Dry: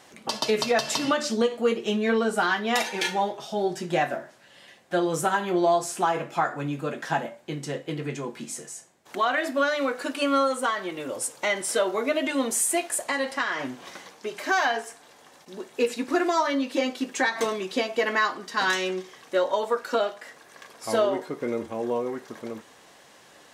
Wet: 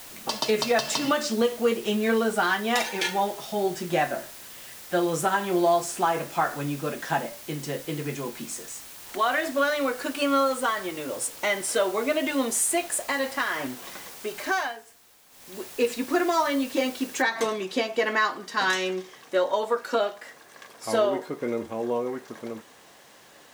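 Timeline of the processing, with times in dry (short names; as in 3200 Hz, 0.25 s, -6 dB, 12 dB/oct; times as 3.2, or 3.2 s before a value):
8.58–9.7 HPF 210 Hz
14.44–15.61 dip -13.5 dB, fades 0.32 s
17.22 noise floor step -44 dB -62 dB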